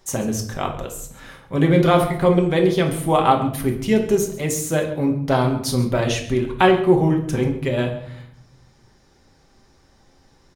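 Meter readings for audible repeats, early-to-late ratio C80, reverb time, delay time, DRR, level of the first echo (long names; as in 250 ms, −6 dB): 1, 12.0 dB, 0.70 s, 136 ms, 2.0 dB, −17.5 dB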